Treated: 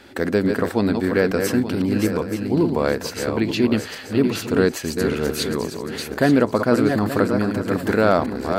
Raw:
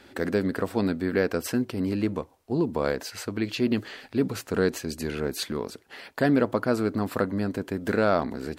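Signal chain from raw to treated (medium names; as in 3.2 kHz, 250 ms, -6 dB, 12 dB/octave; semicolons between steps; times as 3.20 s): backward echo that repeats 439 ms, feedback 49%, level -5.5 dB; trim +5.5 dB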